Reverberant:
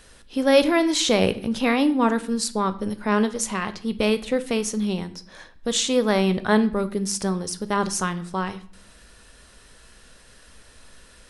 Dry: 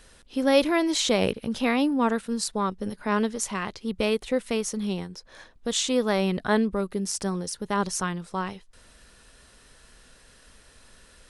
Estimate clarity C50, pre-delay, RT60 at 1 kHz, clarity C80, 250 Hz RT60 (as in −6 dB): 16.0 dB, 9 ms, 0.50 s, 19.5 dB, 0.80 s